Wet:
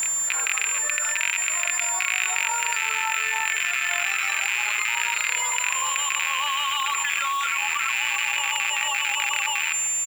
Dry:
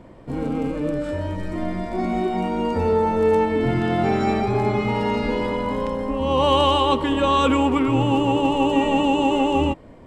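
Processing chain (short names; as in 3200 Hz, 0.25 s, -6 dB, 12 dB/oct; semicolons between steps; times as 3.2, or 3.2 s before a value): rattling part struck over -25 dBFS, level -11 dBFS; reverb removal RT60 1.3 s; HPF 1300 Hz 24 dB/oct; high shelf 2200 Hz -8 dB; comb 4.5 ms, depth 40%; dynamic EQ 1700 Hz, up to +4 dB, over -41 dBFS, Q 0.78; limiter -19 dBFS, peak gain reduction 6.5 dB; whine 7200 Hz -40 dBFS; short-mantissa float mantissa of 2-bit; reverse echo 0.584 s -14 dB; reverb RT60 1.7 s, pre-delay 13 ms, DRR 16.5 dB; fast leveller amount 100%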